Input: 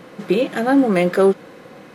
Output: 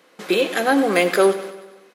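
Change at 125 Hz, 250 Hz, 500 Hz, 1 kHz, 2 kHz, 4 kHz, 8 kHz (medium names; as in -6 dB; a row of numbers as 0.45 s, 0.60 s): -10.0 dB, -4.5 dB, -1.0 dB, +1.5 dB, +4.0 dB, +7.0 dB, no reading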